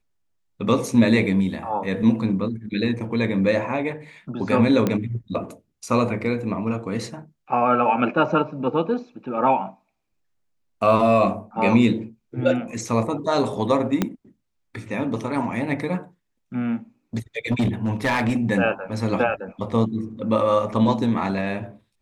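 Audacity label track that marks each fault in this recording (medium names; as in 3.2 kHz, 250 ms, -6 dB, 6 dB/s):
4.870000	4.870000	pop -9 dBFS
14.020000	14.020000	pop -7 dBFS
17.510000	18.370000	clipped -16.5 dBFS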